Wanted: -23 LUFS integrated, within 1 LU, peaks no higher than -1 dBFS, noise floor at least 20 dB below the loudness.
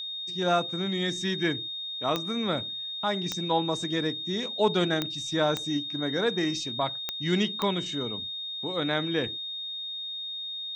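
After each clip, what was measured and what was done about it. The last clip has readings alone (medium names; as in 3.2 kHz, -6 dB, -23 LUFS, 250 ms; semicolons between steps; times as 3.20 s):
clicks found 6; steady tone 3.7 kHz; tone level -33 dBFS; loudness -28.5 LUFS; peak level -10.0 dBFS; loudness target -23.0 LUFS
-> de-click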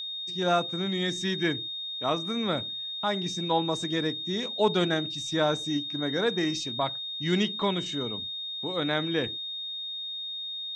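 clicks found 0; steady tone 3.7 kHz; tone level -33 dBFS
-> band-stop 3.7 kHz, Q 30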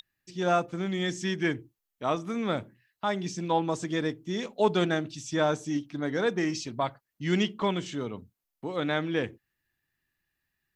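steady tone not found; loudness -30.0 LUFS; peak level -10.5 dBFS; loudness target -23.0 LUFS
-> trim +7 dB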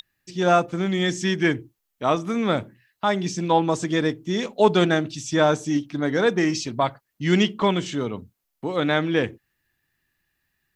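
loudness -23.0 LUFS; peak level -3.5 dBFS; noise floor -78 dBFS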